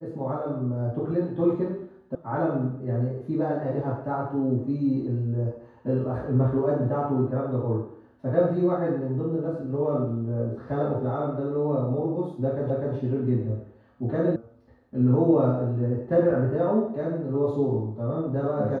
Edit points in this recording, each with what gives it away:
2.15 sound cut off
12.7 repeat of the last 0.25 s
14.36 sound cut off

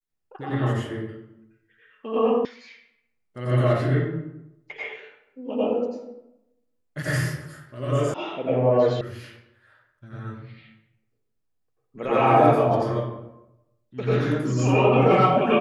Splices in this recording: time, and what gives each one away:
2.45 sound cut off
8.14 sound cut off
9.01 sound cut off

